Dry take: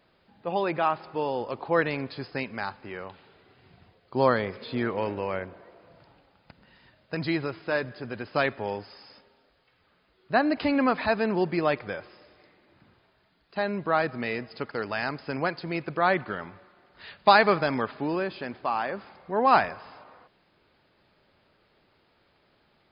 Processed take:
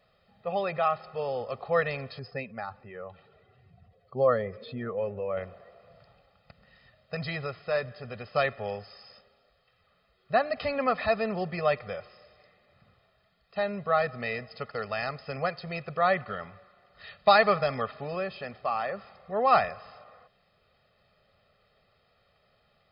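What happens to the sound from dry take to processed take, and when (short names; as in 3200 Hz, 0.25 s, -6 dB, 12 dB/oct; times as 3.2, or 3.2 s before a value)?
2.19–5.37 spectral contrast raised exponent 1.6
whole clip: comb 1.6 ms, depth 100%; gain -5 dB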